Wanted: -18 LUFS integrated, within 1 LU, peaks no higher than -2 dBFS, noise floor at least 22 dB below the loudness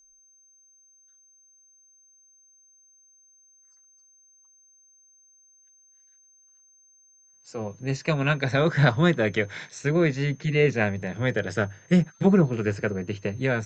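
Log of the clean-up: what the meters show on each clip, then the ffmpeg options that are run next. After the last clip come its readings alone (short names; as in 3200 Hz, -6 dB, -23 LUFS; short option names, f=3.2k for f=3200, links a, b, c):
steady tone 6300 Hz; tone level -56 dBFS; loudness -24.5 LUFS; peak -7.0 dBFS; loudness target -18.0 LUFS
-> -af "bandreject=f=6.3k:w=30"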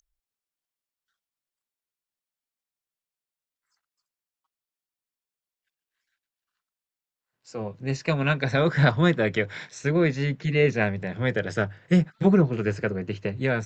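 steady tone none; loudness -24.5 LUFS; peak -7.0 dBFS; loudness target -18.0 LUFS
-> -af "volume=6.5dB,alimiter=limit=-2dB:level=0:latency=1"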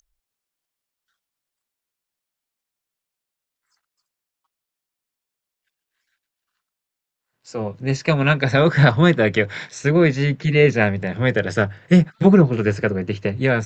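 loudness -18.0 LUFS; peak -2.0 dBFS; noise floor -85 dBFS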